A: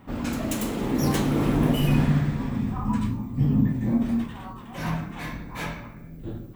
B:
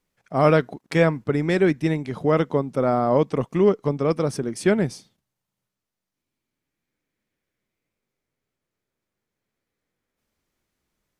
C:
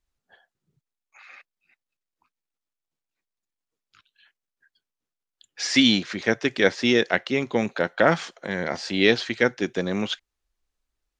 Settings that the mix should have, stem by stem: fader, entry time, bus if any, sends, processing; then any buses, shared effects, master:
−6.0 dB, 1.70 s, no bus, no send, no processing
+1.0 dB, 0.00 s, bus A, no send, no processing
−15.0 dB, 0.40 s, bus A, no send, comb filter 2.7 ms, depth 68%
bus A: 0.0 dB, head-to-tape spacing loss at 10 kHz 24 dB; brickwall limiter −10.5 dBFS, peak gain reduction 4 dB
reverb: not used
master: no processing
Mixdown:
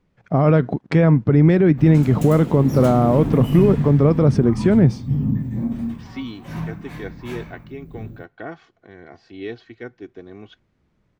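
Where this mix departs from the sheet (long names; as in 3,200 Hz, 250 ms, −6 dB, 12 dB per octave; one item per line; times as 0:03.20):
stem B +1.0 dB → +10.0 dB
master: extra parametric band 110 Hz +8.5 dB 2.4 octaves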